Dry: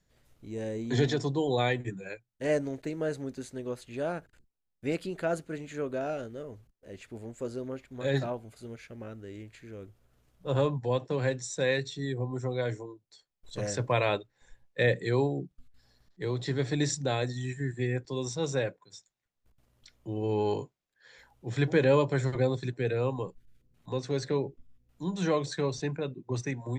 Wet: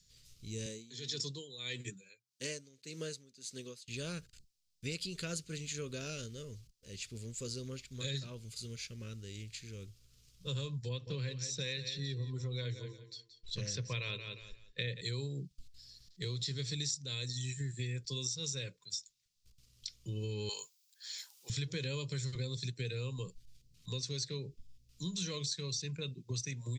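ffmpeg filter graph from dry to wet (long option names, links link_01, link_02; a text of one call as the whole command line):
ffmpeg -i in.wav -filter_complex "[0:a]asettb=1/sr,asplit=3[link_01][link_02][link_03];[link_01]atrim=end=0.664[link_04];[link_02]atrim=start=0.66:end=3.88,asetpts=PTS-STARTPTS,afade=type=in:duration=0.004:curve=qsin,afade=type=out:start_time=3.216:duration=0.004:curve=qsin,highpass=190,aeval=exprs='val(0)*pow(10,-19*(0.5-0.5*cos(2*PI*1.7*n/s))/20)':channel_layout=same[link_05];[link_03]atrim=start=3.876[link_06];[link_04][link_05]acrossfade=duration=0.004:curve1=hsin:curve2=qsin[link_07];[link_07][link_06]acrossfade=duration=0.004:curve1=qsin:curve2=hsin,asettb=1/sr,asplit=3[link_08][link_09][link_10];[link_08]atrim=end=10.894[link_11];[link_09]atrim=start=10.89:end=15.01,asetpts=PTS-STARTPTS,afade=type=in:duration=0.004:curve=qsin,afade=type=out:start_time=4.116:duration=0.004:curve=qsin,lowpass=3600,aecho=1:1:177|354|531:0.251|0.0628|0.0157,atrim=end_sample=181692[link_12];[link_10]atrim=start=15.006[link_13];[link_11][link_12]acrossfade=duration=0.004:curve1=hsin:curve2=qsin[link_14];[link_14][link_13]acrossfade=duration=0.004:curve1=qsin:curve2=hsin,asettb=1/sr,asplit=3[link_15][link_16][link_17];[link_15]atrim=end=20.494[link_18];[link_16]atrim=start=20.49:end=21.5,asetpts=PTS-STARTPTS,afade=type=in:duration=0.004:curve=qsin,afade=type=out:start_time=1.006:duration=0.004:curve=qsin,highpass=frequency=800:width_type=q:width=2.2,aemphasis=mode=production:type=50fm[link_19];[link_17]atrim=start=21.496[link_20];[link_18][link_19]acrossfade=duration=0.004:curve1=hsin:curve2=qsin[link_21];[link_21][link_20]acrossfade=duration=0.004:curve1=qsin:curve2=hsin,firequalizer=gain_entry='entry(150,0);entry(300,-13);entry(460,-8);entry(730,-27);entry(1100,-10);entry(1700,-9);entry(2500,3);entry(4800,15);entry(11000,4)':delay=0.05:min_phase=1,acompressor=threshold=-37dB:ratio=6,volume=1.5dB" out.wav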